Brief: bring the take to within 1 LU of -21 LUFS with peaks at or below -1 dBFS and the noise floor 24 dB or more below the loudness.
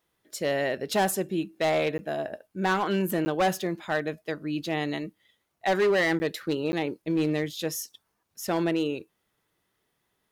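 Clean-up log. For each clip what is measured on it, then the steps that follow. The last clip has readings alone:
clipped samples 1.4%; clipping level -19.0 dBFS; dropouts 4; longest dropout 10 ms; loudness -28.0 LUFS; peak level -19.0 dBFS; loudness target -21.0 LUFS
-> clip repair -19 dBFS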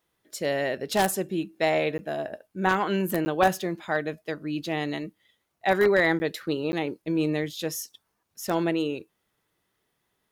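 clipped samples 0.0%; dropouts 4; longest dropout 10 ms
-> interpolate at 1.98/3.25/6.19/6.72 s, 10 ms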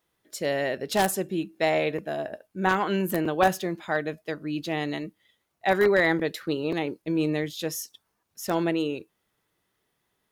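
dropouts 0; loudness -27.0 LUFS; peak level -10.0 dBFS; loudness target -21.0 LUFS
-> trim +6 dB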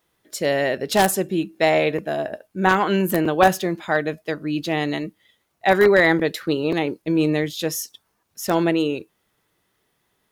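loudness -21.0 LUFS; peak level -4.0 dBFS; noise floor -71 dBFS

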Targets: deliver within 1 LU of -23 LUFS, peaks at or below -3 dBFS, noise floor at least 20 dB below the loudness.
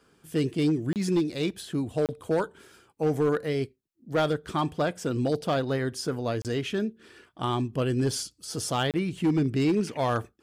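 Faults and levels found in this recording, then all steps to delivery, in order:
clipped samples 1.0%; clipping level -18.5 dBFS; dropouts 4; longest dropout 28 ms; loudness -28.0 LUFS; peak level -18.5 dBFS; loudness target -23.0 LUFS
-> clip repair -18.5 dBFS; interpolate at 0.93/2.06/6.42/8.91 s, 28 ms; trim +5 dB

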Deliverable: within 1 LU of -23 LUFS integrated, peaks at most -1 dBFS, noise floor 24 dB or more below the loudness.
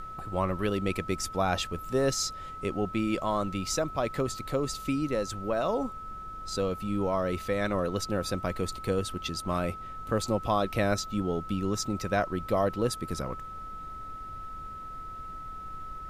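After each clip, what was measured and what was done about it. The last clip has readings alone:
steady tone 1.3 kHz; tone level -39 dBFS; noise floor -41 dBFS; noise floor target -55 dBFS; loudness -31.0 LUFS; peak level -13.0 dBFS; loudness target -23.0 LUFS
-> band-stop 1.3 kHz, Q 30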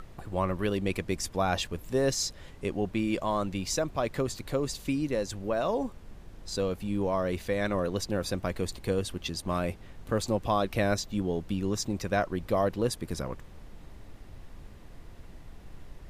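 steady tone not found; noise floor -49 dBFS; noise floor target -55 dBFS
-> noise print and reduce 6 dB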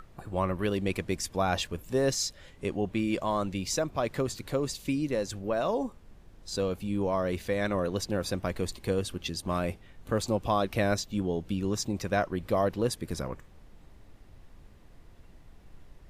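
noise floor -54 dBFS; noise floor target -55 dBFS
-> noise print and reduce 6 dB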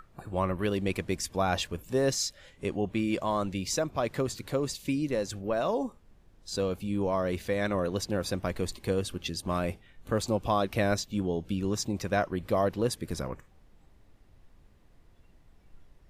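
noise floor -59 dBFS; loudness -31.0 LUFS; peak level -13.5 dBFS; loudness target -23.0 LUFS
-> trim +8 dB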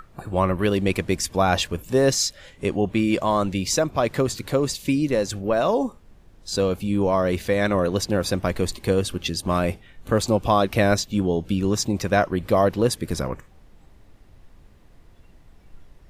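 loudness -23.0 LUFS; peak level -5.5 dBFS; noise floor -51 dBFS

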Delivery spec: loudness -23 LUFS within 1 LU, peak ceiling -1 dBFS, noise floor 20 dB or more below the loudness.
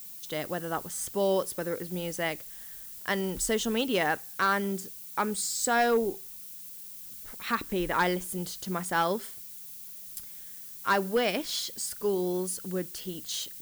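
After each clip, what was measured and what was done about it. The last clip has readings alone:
clipped samples 0.3%; clipping level -18.0 dBFS; noise floor -44 dBFS; noise floor target -50 dBFS; loudness -30.0 LUFS; peak level -18.0 dBFS; loudness target -23.0 LUFS
-> clip repair -18 dBFS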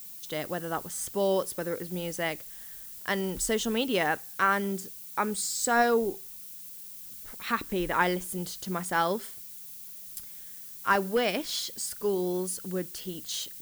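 clipped samples 0.0%; noise floor -44 dBFS; noise floor target -50 dBFS
-> noise reduction 6 dB, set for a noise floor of -44 dBFS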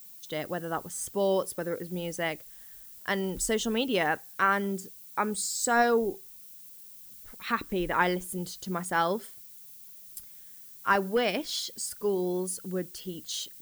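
noise floor -49 dBFS; noise floor target -50 dBFS
-> noise reduction 6 dB, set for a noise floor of -49 dBFS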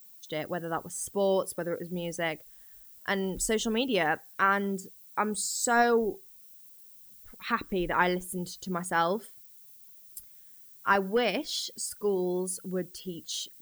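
noise floor -53 dBFS; loudness -30.0 LUFS; peak level -10.5 dBFS; loudness target -23.0 LUFS
-> trim +7 dB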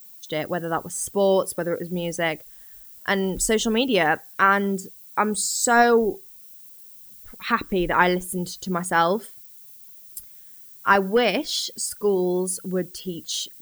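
loudness -23.0 LUFS; peak level -3.5 dBFS; noise floor -46 dBFS

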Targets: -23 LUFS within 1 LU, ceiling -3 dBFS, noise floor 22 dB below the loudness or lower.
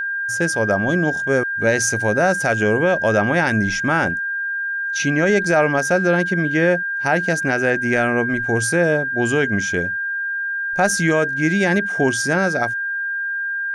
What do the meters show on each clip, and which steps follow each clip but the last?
steady tone 1.6 kHz; tone level -21 dBFS; loudness -18.5 LUFS; peak level -6.0 dBFS; loudness target -23.0 LUFS
-> band-stop 1.6 kHz, Q 30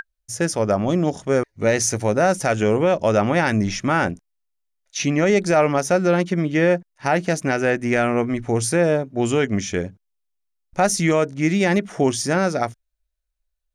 steady tone not found; loudness -20.0 LUFS; peak level -7.5 dBFS; loudness target -23.0 LUFS
-> trim -3 dB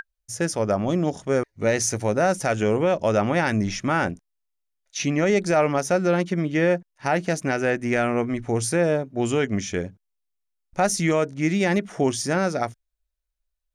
loudness -23.0 LUFS; peak level -10.5 dBFS; noise floor -79 dBFS

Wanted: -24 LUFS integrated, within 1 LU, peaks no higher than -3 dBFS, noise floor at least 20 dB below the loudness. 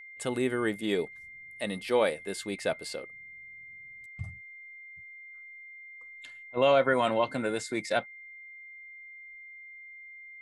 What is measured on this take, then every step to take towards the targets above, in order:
steady tone 2.1 kHz; tone level -45 dBFS; loudness -29.5 LUFS; peak level -12.5 dBFS; loudness target -24.0 LUFS
-> band-stop 2.1 kHz, Q 30; trim +5.5 dB

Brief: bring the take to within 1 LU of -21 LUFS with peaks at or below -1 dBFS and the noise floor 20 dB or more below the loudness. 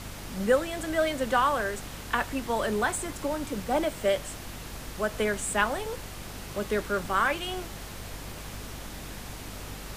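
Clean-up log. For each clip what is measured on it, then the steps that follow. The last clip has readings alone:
hum 50 Hz; highest harmonic 250 Hz; hum level -42 dBFS; noise floor -41 dBFS; noise floor target -50 dBFS; loudness -29.5 LUFS; peak level -11.0 dBFS; loudness target -21.0 LUFS
-> hum notches 50/100/150/200/250 Hz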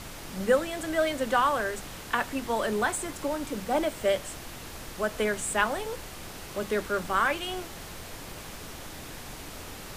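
hum not found; noise floor -42 dBFS; noise floor target -49 dBFS
-> noise print and reduce 7 dB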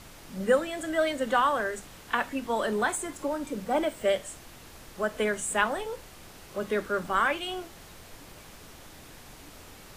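noise floor -49 dBFS; loudness -29.0 LUFS; peak level -11.0 dBFS; loudness target -21.0 LUFS
-> trim +8 dB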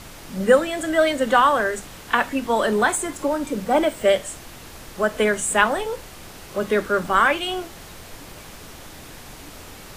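loudness -21.0 LUFS; peak level -3.0 dBFS; noise floor -41 dBFS

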